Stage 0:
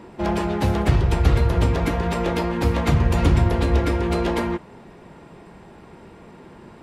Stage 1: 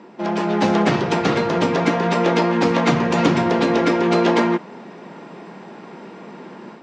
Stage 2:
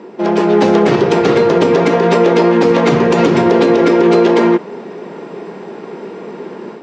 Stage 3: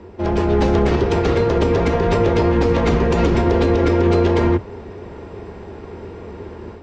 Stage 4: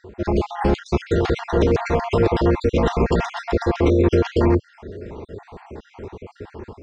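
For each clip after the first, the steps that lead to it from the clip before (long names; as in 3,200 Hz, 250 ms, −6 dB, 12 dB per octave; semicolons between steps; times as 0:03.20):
elliptic band-pass filter 190–6,400 Hz, stop band 50 dB; automatic gain control gain up to 8 dB
parametric band 420 Hz +10.5 dB 0.58 octaves; boost into a limiter +6 dB; level −1 dB
sub-octave generator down 2 octaves, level +2 dB; level −7 dB
time-frequency cells dropped at random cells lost 50%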